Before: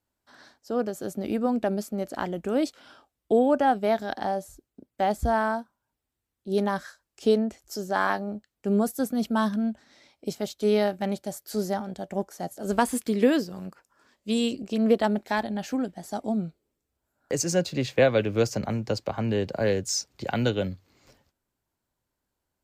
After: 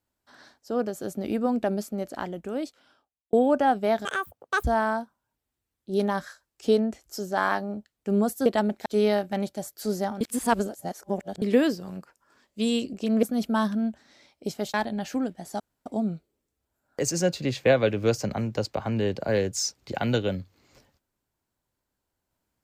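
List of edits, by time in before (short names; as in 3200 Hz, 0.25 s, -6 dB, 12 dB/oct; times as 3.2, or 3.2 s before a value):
1.84–3.33 fade out
4.05–5.22 speed 199%
9.04–10.55 swap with 14.92–15.32
11.9–13.11 reverse
16.18 insert room tone 0.26 s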